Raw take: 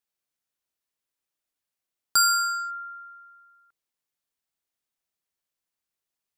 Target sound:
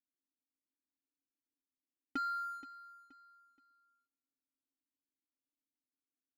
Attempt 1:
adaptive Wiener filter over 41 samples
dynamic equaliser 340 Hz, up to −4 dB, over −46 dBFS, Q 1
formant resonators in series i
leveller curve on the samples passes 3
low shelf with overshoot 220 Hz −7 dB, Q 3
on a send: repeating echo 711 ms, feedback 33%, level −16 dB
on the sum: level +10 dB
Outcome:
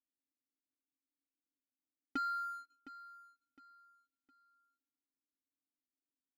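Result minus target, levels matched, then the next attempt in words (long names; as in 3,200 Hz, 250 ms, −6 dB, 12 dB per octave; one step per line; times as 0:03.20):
echo 236 ms late
adaptive Wiener filter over 41 samples
dynamic equaliser 340 Hz, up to −4 dB, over −46 dBFS, Q 1
formant resonators in series i
leveller curve on the samples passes 3
low shelf with overshoot 220 Hz −7 dB, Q 3
on a send: repeating echo 475 ms, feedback 33%, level −16 dB
on the sum: level +10 dB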